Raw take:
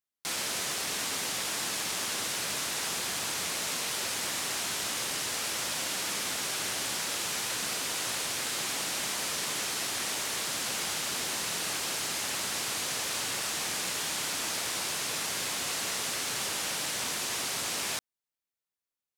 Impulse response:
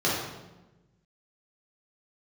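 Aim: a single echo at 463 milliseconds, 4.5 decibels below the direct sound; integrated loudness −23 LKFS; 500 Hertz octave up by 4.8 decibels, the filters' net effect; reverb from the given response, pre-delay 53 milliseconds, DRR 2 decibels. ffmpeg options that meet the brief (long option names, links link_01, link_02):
-filter_complex "[0:a]equalizer=frequency=500:width_type=o:gain=6,aecho=1:1:463:0.596,asplit=2[link_01][link_02];[1:a]atrim=start_sample=2205,adelay=53[link_03];[link_02][link_03]afir=irnorm=-1:irlink=0,volume=-16dB[link_04];[link_01][link_04]amix=inputs=2:normalize=0,volume=4.5dB"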